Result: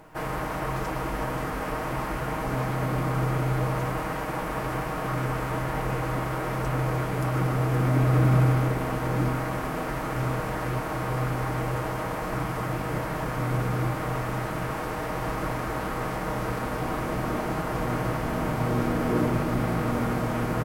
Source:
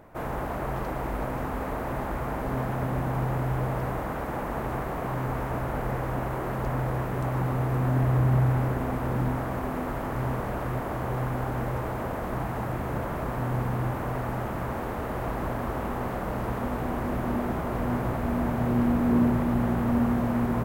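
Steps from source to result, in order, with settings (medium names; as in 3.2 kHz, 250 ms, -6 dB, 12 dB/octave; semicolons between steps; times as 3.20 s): comb 6.4 ms, depth 54%; formant shift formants +4 st; high-order bell 7.7 kHz +8 dB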